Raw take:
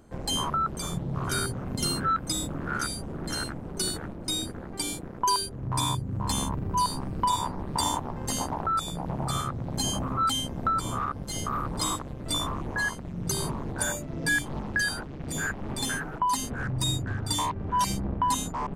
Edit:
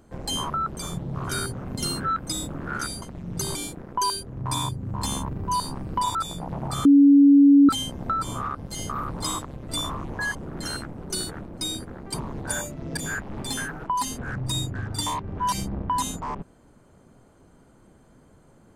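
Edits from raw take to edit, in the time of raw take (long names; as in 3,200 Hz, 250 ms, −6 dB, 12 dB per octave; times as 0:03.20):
0:03.02–0:04.81: swap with 0:12.92–0:13.45
0:07.41–0:08.72: remove
0:09.42–0:10.26: beep over 282 Hz −10 dBFS
0:14.28–0:15.29: remove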